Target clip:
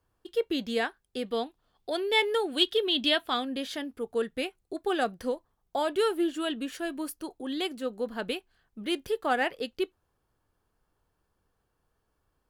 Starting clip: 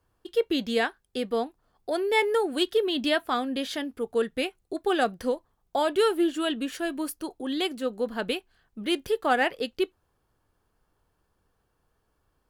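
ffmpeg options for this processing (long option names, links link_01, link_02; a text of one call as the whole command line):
ffmpeg -i in.wav -filter_complex "[0:a]asettb=1/sr,asplit=3[link_01][link_02][link_03];[link_01]atrim=end=1.264[link_04];[link_02]atrim=start=1.26:end=3.45,asetpts=PTS-STARTPTS,afade=type=in:duration=0.004:curve=qsin,afade=type=out:start_time=2.186:duration=0.004:curve=qsin,equalizer=frequency=3400:width_type=o:width=0.79:gain=9.5[link_05];[link_03]atrim=start=3.446[link_06];[link_04][link_05]acrossfade=duration=0.004:curve1=hsin:curve2=qsin[link_07];[link_07][link_06]acrossfade=duration=0.004:curve1=qsin:curve2=hsin,volume=-3.5dB" out.wav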